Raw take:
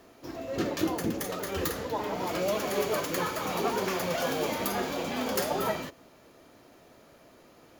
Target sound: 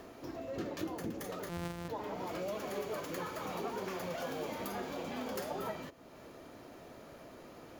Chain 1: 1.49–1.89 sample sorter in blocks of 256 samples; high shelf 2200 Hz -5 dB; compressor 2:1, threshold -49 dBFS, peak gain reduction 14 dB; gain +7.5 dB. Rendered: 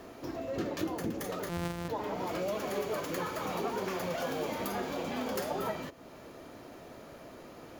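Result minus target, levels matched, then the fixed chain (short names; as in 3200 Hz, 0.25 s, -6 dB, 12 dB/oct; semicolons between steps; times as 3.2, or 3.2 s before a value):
compressor: peak gain reduction -4.5 dB
1.49–1.89 sample sorter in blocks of 256 samples; high shelf 2200 Hz -5 dB; compressor 2:1, threshold -58.5 dBFS, peak gain reduction 19 dB; gain +7.5 dB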